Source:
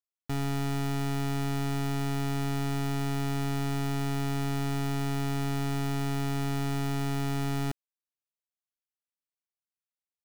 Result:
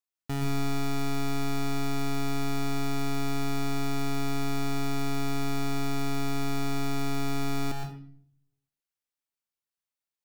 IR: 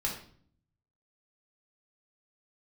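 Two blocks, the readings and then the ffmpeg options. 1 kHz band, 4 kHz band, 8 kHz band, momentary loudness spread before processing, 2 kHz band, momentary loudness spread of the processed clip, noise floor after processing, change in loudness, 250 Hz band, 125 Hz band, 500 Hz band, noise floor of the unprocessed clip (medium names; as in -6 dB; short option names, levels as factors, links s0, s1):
+1.0 dB, +2.0 dB, +1.5 dB, 0 LU, +1.0 dB, 0 LU, under -85 dBFS, -0.5 dB, +0.5 dB, -4.0 dB, +1.0 dB, under -85 dBFS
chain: -filter_complex "[0:a]asplit=2[s0][s1];[s1]lowshelf=f=360:g=-7.5[s2];[1:a]atrim=start_sample=2205,adelay=116[s3];[s2][s3]afir=irnorm=-1:irlink=0,volume=0.473[s4];[s0][s4]amix=inputs=2:normalize=0"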